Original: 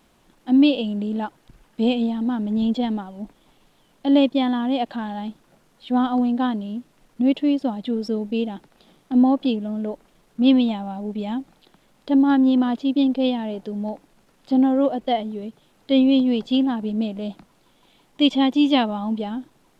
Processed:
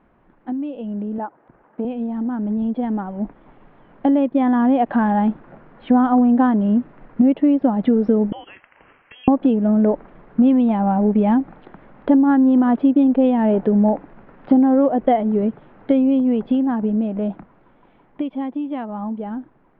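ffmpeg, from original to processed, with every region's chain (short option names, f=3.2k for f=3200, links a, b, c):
-filter_complex "[0:a]asettb=1/sr,asplit=3[a][b][c];[a]atrim=end=1.184[d];[b]atrim=start=1.18:end=1.85,asetpts=PTS-STARTPTS,afade=t=in:d=0.004:c=qsin,afade=t=out:st=0.666:d=0.004:c=qsin,bandpass=f=710:t=q:w=0.73,acontrast=28[e];[c]atrim=start=1.846[f];[d][e]acrossfade=d=0.004:c1=hsin:c2=qsin[g];[g][f]acrossfade=d=0.004:c1=qsin:c2=hsin,asettb=1/sr,asplit=3[h][i][j];[h]atrim=end=8.324[k];[i]atrim=start=8.32:end=9.28,asetpts=PTS-STARTPTS,afade=t=in:d=0.004:c=qsin,afade=t=out:st=0.956:d=0.004:c=qsin,highpass=790,acompressor=threshold=-45dB:ratio=2.5:attack=3.2:release=140:knee=1:detection=peak,lowpass=f=3k:t=q:w=0.5098,lowpass=f=3k:t=q:w=0.6013,lowpass=f=3k:t=q:w=0.9,lowpass=f=3k:t=q:w=2.563,afreqshift=-3500[l];[j]atrim=start=9.276[m];[k][l]acrossfade=d=0.004:c1=hsin:c2=qsin[n];[n][m]acrossfade=d=0.004:c1=qsin:c2=hsin,acompressor=threshold=-26dB:ratio=10,lowpass=f=1.9k:w=0.5412,lowpass=f=1.9k:w=1.3066,dynaudnorm=f=350:g=21:m=12.5dB,volume=2.5dB"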